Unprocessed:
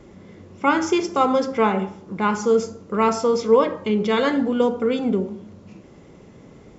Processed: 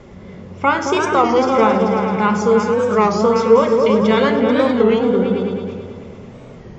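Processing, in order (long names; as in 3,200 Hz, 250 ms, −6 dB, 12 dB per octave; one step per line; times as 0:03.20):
parametric band 310 Hz −11.5 dB 0.32 octaves
mains-hum notches 50/100/150/200 Hz
in parallel at −1 dB: downward compressor, threshold −26 dBFS, peak gain reduction 14 dB
on the sum: high-frequency loss of the air 66 metres
on a send: echo whose low-pass opens from repeat to repeat 109 ms, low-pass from 200 Hz, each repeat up 2 octaves, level 0 dB
on the sum: wow of a warped record 33 1/3 rpm, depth 160 cents
level +2 dB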